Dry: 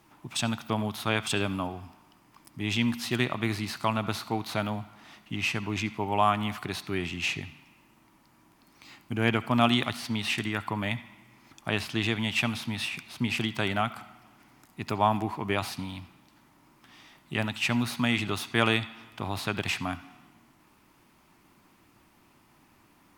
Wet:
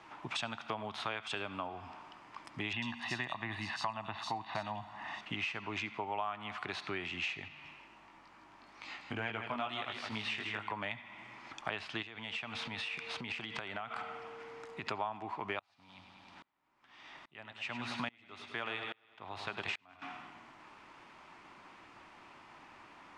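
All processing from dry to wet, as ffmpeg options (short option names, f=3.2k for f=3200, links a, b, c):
-filter_complex "[0:a]asettb=1/sr,asplit=3[a][b][c];[a]atrim=end=2.734[d];[b]atrim=start=2.73:end=5.21,asetpts=PTS-STARTPTS,afade=t=in:d=0.004:c=qsin,afade=t=out:st=2.476:d=0.004:c=qsin,aecho=1:1:1.1:0.68,atrim=end_sample=109368,acrossover=split=3200[e][f];[f]adelay=90[g];[e][g]amix=inputs=2:normalize=0,atrim=end_sample=109368[h];[c]atrim=start=5.206[i];[d][h]acrossfade=d=0.004:c1=hsin:c2=qsin[j];[j][i]acrossfade=d=0.004:c1=qsin:c2=hsin,asettb=1/sr,asplit=3[k][l][m];[k]atrim=end=7.484[n];[l]atrim=start=7.48:end=10.72,asetpts=PTS-STARTPTS,afade=t=in:d=0.004:c=qsin,afade=t=out:st=3.236:d=0.004:c=qsin,flanger=delay=18.5:depth=2.5:speed=2.2,aecho=1:1:160:0.398,atrim=end_sample=142884[o];[m]atrim=start=10.716[p];[n][o]acrossfade=d=0.004:c1=hsin:c2=qsin[q];[q][p]acrossfade=d=0.004:c1=qsin:c2=hsin,asettb=1/sr,asplit=3[r][s][t];[r]atrim=end=12.024[u];[s]atrim=start=12.02:end=14.87,asetpts=PTS-STARTPTS,afade=t=in:d=0.004:c=qsin,afade=t=out:st=2.846:d=0.004:c=qsin,aeval=exprs='val(0)+0.00224*sin(2*PI*460*n/s)':c=same,acompressor=threshold=-37dB:ratio=16:attack=3.2:release=140:knee=1:detection=peak[v];[t]atrim=start=14.866[w];[u][v]acrossfade=d=0.004:c1=hsin:c2=qsin[x];[x][w]acrossfade=d=0.004:c1=qsin:c2=hsin,asettb=1/sr,asplit=3[y][z][aa];[y]atrim=end=15.594[ab];[z]atrim=start=15.59:end=20.02,asetpts=PTS-STARTPTS,afade=t=in:d=0.004:c=qsin,afade=t=out:st=4.426:d=0.004:c=qsin,aecho=1:1:101|202|303|404|505|606|707:0.282|0.169|0.101|0.0609|0.0365|0.0219|0.0131,atrim=end_sample=195363,aeval=exprs='val(0)*pow(10,-33*if(lt(mod(-1.2*n/s,1),2*abs(-1.2)/1000),1-mod(-1.2*n/s,1)/(2*abs(-1.2)/1000),(mod(-1.2*n/s,1)-2*abs(-1.2)/1000)/(1-2*abs(-1.2)/1000))/20)':c=same[ac];[aa]atrim=start=20.016[ad];[ab][ac]acrossfade=d=0.004:c1=hsin:c2=qsin[ae];[ae][ad]acrossfade=d=0.004:c1=qsin:c2=hsin,lowpass=f=8k:w=0.5412,lowpass=f=8k:w=1.3066,acrossover=split=450 3600:gain=0.224 1 0.251[af][ag][ah];[af][ag][ah]amix=inputs=3:normalize=0,acompressor=threshold=-46dB:ratio=5,volume=9dB"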